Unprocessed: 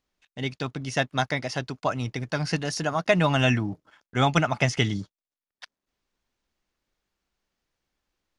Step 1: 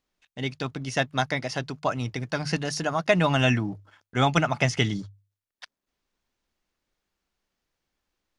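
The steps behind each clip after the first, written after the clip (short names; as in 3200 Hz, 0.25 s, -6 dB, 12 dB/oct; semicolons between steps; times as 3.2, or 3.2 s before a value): notches 50/100/150 Hz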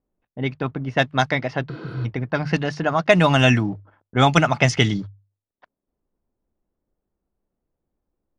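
low-pass opened by the level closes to 570 Hz, open at -18 dBFS; spectral repair 1.72–2.03, 210–9200 Hz before; gain +6 dB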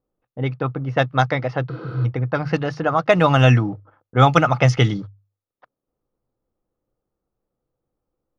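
thirty-one-band EQ 125 Hz +10 dB, 315 Hz +4 dB, 500 Hz +10 dB, 800 Hz +5 dB, 1250 Hz +10 dB, 8000 Hz -9 dB; gain -3.5 dB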